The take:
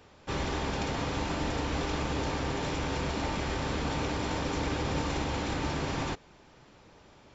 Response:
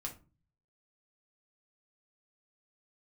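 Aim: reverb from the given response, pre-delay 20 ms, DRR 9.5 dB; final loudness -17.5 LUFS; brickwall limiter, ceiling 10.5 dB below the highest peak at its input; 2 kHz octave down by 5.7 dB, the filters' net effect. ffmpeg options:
-filter_complex "[0:a]equalizer=f=2000:t=o:g=-7.5,alimiter=level_in=1.88:limit=0.0631:level=0:latency=1,volume=0.531,asplit=2[s0][s1];[1:a]atrim=start_sample=2205,adelay=20[s2];[s1][s2]afir=irnorm=-1:irlink=0,volume=0.398[s3];[s0][s3]amix=inputs=2:normalize=0,volume=10.6"

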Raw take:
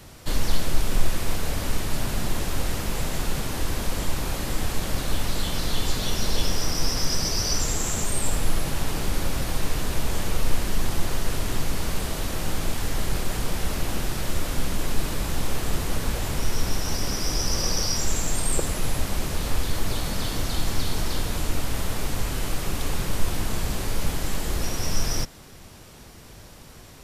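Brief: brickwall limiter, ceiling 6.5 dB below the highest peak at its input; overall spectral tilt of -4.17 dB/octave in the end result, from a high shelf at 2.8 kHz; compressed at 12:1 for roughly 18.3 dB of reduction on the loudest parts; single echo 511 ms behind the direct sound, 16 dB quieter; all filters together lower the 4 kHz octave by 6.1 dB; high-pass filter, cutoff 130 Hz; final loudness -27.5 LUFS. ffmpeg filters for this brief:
-af "highpass=130,highshelf=f=2800:g=-4.5,equalizer=f=4000:t=o:g=-4,acompressor=threshold=0.00891:ratio=12,alimiter=level_in=3.98:limit=0.0631:level=0:latency=1,volume=0.251,aecho=1:1:511:0.158,volume=7.94"

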